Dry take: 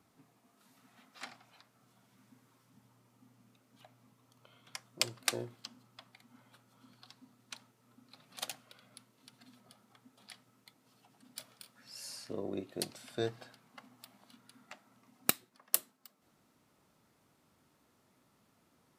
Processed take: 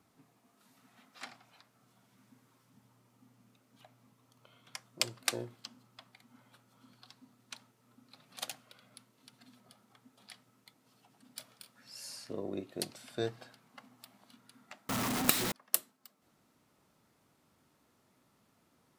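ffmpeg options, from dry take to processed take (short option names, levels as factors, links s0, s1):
-filter_complex "[0:a]asettb=1/sr,asplit=3[s0][s1][s2];[s0]atrim=end=14.894[s3];[s1]atrim=start=14.89:end=15.52,asetpts=PTS-STARTPTS,afade=t=in:d=0.004:c=qsin,afade=t=out:st=0.626:d=0.004:c=qsin,aeval=exprs='val(0)+0.5*0.0422*sgn(val(0))':c=same[s4];[s2]atrim=start=15.516[s5];[s3][s4]acrossfade=d=0.004:c1=hsin:c2=qsin[s6];[s6][s5]acrossfade=d=0.004:c1=qsin:c2=hsin"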